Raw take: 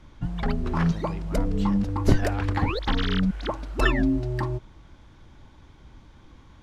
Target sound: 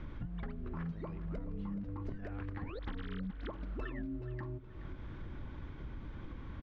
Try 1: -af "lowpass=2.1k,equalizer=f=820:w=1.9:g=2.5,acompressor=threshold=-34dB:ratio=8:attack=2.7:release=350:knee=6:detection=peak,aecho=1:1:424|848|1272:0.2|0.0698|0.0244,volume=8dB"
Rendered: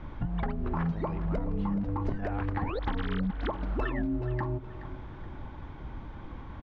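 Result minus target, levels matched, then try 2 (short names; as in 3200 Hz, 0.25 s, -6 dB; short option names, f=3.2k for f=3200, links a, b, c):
compressor: peak gain reduction -9.5 dB; 1000 Hz band +4.0 dB
-af "lowpass=2.1k,equalizer=f=820:w=1.9:g=-7.5,acompressor=threshold=-45.5dB:ratio=8:attack=2.7:release=350:knee=6:detection=peak,aecho=1:1:424|848|1272:0.2|0.0698|0.0244,volume=8dB"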